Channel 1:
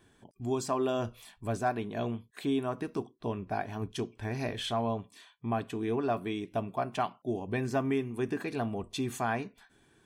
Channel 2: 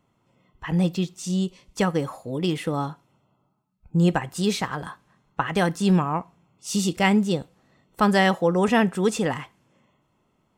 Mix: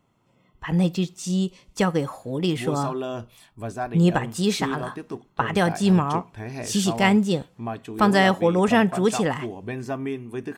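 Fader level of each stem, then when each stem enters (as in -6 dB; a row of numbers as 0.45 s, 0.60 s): +0.5 dB, +1.0 dB; 2.15 s, 0.00 s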